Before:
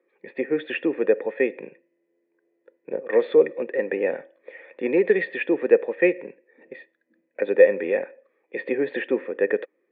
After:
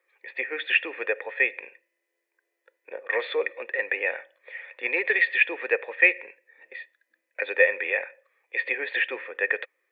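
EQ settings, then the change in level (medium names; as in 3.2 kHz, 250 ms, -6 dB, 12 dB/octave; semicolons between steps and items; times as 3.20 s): high-pass 630 Hz 12 dB/octave; dynamic bell 2.3 kHz, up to +4 dB, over -46 dBFS, Q 3.1; tilt shelf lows -8.5 dB, about 830 Hz; 0.0 dB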